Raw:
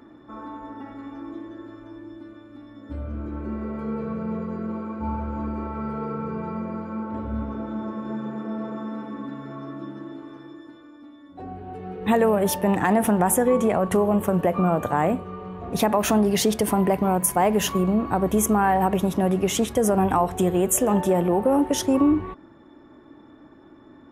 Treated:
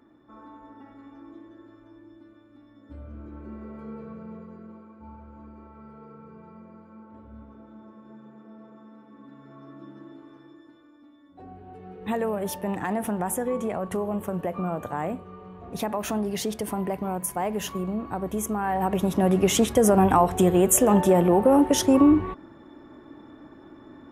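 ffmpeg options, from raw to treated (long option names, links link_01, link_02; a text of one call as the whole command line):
ffmpeg -i in.wav -af "volume=9.5dB,afade=type=out:start_time=3.85:duration=1.06:silence=0.421697,afade=type=in:start_time=9.05:duration=0.96:silence=0.354813,afade=type=in:start_time=18.62:duration=0.83:silence=0.316228" out.wav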